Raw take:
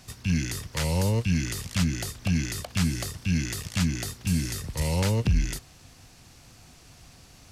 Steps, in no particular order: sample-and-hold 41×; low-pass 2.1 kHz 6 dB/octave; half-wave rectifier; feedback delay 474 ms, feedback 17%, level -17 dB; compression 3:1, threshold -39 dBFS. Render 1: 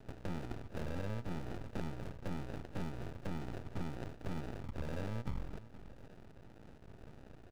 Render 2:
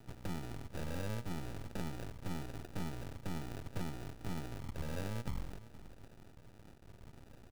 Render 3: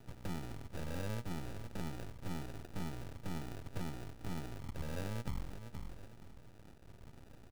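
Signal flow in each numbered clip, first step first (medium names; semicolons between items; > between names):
sample-and-hold > low-pass > half-wave rectifier > compression > feedback delay; low-pass > half-wave rectifier > compression > feedback delay > sample-and-hold; half-wave rectifier > feedback delay > compression > low-pass > sample-and-hold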